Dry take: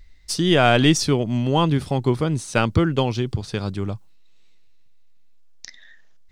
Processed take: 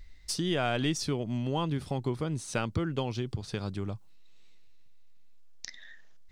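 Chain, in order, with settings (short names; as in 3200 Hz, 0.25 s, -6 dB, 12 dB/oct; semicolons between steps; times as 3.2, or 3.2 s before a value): compressor 2:1, threshold -34 dBFS, peak gain reduction 12.5 dB; gain -1.5 dB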